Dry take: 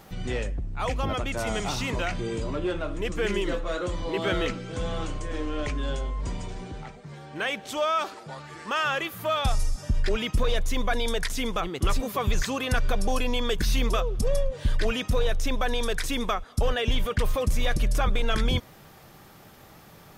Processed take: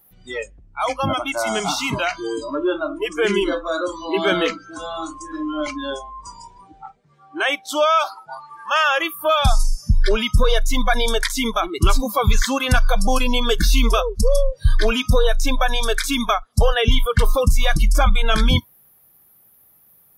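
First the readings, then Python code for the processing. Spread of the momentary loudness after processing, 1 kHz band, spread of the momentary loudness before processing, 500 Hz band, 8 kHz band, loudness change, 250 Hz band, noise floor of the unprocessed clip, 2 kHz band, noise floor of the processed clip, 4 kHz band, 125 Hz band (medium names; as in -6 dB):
12 LU, +9.0 dB, 7 LU, +7.5 dB, +8.5 dB, +8.0 dB, +7.0 dB, -50 dBFS, +8.0 dB, -54 dBFS, +8.5 dB, +6.5 dB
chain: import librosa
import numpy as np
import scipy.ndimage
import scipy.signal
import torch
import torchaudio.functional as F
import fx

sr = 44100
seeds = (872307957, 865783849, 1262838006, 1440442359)

y = fx.noise_reduce_blind(x, sr, reduce_db=26)
y = y * librosa.db_to_amplitude(9.0)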